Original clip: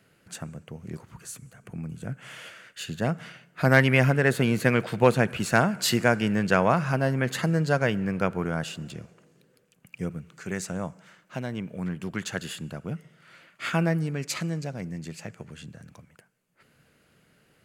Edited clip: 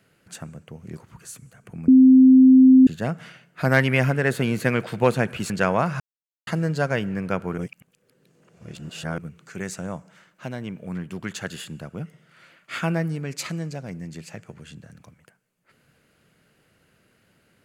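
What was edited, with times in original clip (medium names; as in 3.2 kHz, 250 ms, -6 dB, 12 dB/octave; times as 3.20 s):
1.88–2.87 s: bleep 260 Hz -8 dBFS
5.50–6.41 s: delete
6.91–7.38 s: mute
8.49–10.09 s: reverse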